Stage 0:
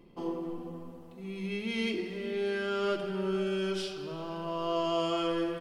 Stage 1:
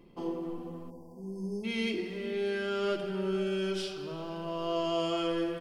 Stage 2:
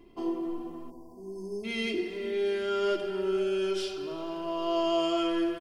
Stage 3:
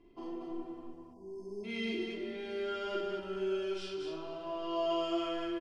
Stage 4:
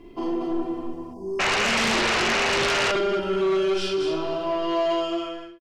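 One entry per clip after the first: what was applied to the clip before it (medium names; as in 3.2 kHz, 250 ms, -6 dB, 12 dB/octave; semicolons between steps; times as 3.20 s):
spectral selection erased 0.90–1.64 s, 1.1–4.5 kHz; dynamic bell 1.1 kHz, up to -4 dB, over -46 dBFS, Q 2.2
comb 2.9 ms, depth 71%
distance through air 68 m; loudspeakers at several distances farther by 15 m -1 dB, 80 m -3 dB; trim -8.5 dB
fade out at the end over 1.25 s; painted sound noise, 1.39–2.92 s, 470–3000 Hz -34 dBFS; sine folder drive 12 dB, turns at -19 dBFS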